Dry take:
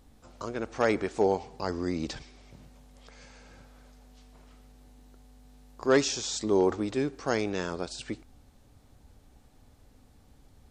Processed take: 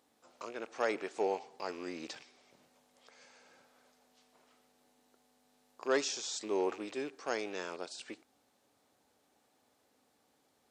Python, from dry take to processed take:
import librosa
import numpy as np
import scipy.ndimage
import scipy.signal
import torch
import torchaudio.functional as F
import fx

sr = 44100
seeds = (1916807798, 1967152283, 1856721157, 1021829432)

y = fx.rattle_buzz(x, sr, strikes_db=-44.0, level_db=-35.0)
y = scipy.signal.sosfilt(scipy.signal.butter(2, 380.0, 'highpass', fs=sr, output='sos'), y)
y = y * librosa.db_to_amplitude(-6.0)